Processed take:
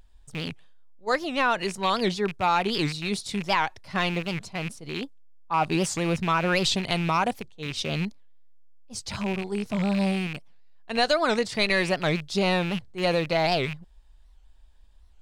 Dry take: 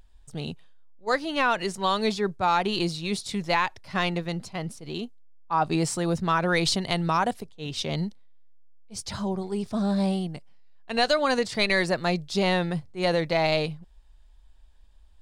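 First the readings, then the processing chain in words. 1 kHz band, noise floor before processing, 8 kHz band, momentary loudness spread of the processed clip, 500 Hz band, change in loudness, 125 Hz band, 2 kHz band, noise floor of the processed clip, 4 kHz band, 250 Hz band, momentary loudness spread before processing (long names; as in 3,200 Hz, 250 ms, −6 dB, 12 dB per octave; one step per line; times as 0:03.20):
0.0 dB, −53 dBFS, 0.0 dB, 11 LU, 0.0 dB, 0.0 dB, 0.0 dB, +1.0 dB, −53 dBFS, +0.5 dB, 0.0 dB, 13 LU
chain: loose part that buzzes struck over −34 dBFS, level −24 dBFS
wow of a warped record 78 rpm, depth 250 cents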